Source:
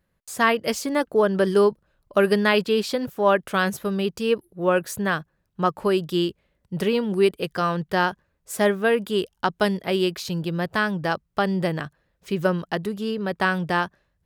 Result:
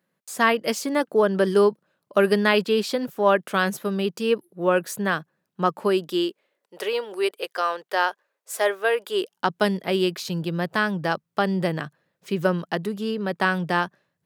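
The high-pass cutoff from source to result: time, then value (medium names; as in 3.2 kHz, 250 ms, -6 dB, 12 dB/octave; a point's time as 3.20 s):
high-pass 24 dB/octave
5.76 s 160 Hz
6.79 s 440 Hz
9.04 s 440 Hz
9.51 s 130 Hz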